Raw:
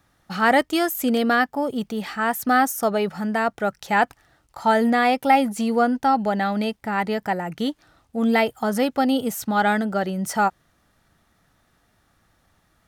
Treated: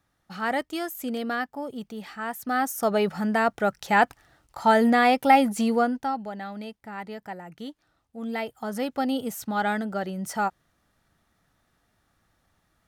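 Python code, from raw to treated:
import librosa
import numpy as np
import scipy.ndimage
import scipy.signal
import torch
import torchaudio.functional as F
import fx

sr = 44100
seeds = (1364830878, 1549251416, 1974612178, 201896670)

y = fx.gain(x, sr, db=fx.line((2.44, -9.5), (2.98, -0.5), (5.67, -0.5), (6.29, -13.0), (8.21, -13.0), (9.0, -6.0)))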